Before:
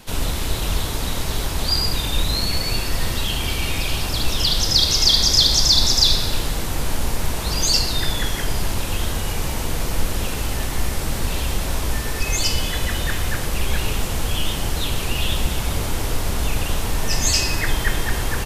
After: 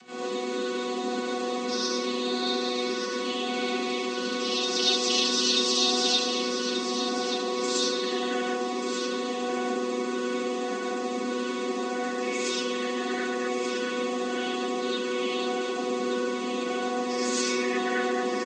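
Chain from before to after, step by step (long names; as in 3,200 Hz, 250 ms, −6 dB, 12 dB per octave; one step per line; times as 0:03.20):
channel vocoder with a chord as carrier bare fifth, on B3
upward compression, threshold −39 dBFS
flanger 0.13 Hz, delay 9.8 ms, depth 5.6 ms, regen −69%
pitch vibrato 14 Hz 13 cents
on a send: single-tap delay 1,183 ms −8.5 dB
on the sum: reverb whose tail is shaped and stops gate 140 ms rising, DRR −7 dB
level −7.5 dB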